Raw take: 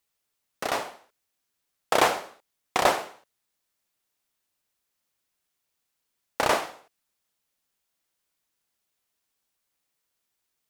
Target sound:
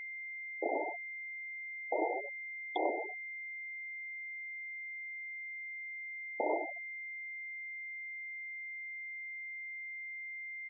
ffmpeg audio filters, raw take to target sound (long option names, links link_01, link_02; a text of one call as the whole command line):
ffmpeg -i in.wav -af "lowshelf=frequency=220:width_type=q:width=3:gain=-12.5,acompressor=threshold=-32dB:ratio=16,asuperstop=centerf=1700:order=20:qfactor=0.8,aecho=1:1:76|152|228|304|380:0.224|0.112|0.056|0.028|0.014,dynaudnorm=framelen=260:gausssize=5:maxgain=7.5dB,asoftclip=type=tanh:threshold=-24dB,flanger=delay=6.9:depth=5.9:regen=57:speed=0.89:shape=triangular,afftfilt=real='re*gte(hypot(re,im),0.0316)':imag='im*gte(hypot(re,im),0.0316)':win_size=1024:overlap=0.75,aeval=exprs='val(0)+0.00562*sin(2*PI*2100*n/s)':channel_layout=same,volume=4dB" out.wav